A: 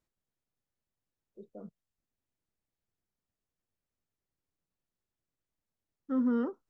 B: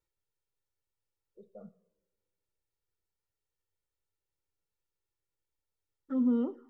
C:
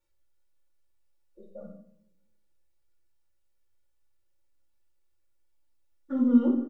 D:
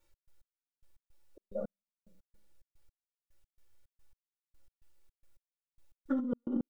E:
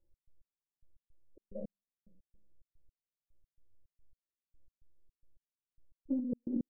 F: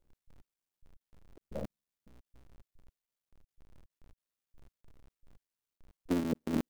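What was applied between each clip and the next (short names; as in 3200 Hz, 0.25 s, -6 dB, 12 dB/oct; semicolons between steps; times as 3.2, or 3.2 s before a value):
two-slope reverb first 0.67 s, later 2.1 s, from -19 dB, DRR 11.5 dB; envelope flanger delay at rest 2.2 ms, full sweep at -28 dBFS
comb 3.5 ms, depth 63%; shoebox room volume 97 m³, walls mixed, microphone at 0.91 m; gain +1 dB
step gate "x.x...x.x" 109 bpm -60 dB; negative-ratio compressor -32 dBFS, ratio -1
Gaussian blur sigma 16 samples
cycle switcher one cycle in 3, muted; gain +4.5 dB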